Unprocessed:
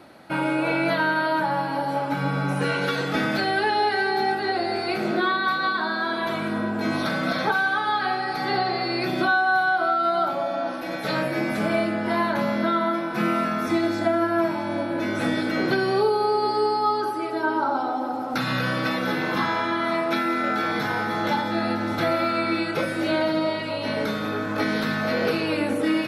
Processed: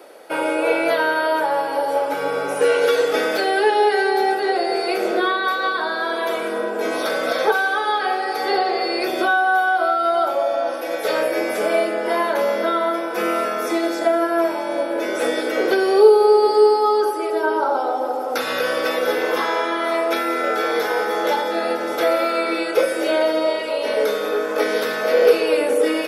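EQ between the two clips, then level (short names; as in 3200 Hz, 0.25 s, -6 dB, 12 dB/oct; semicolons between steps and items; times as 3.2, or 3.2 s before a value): resonant high-pass 460 Hz, resonance Q 4.9; high shelf 4500 Hz +12 dB; notch 4100 Hz, Q 7.9; 0.0 dB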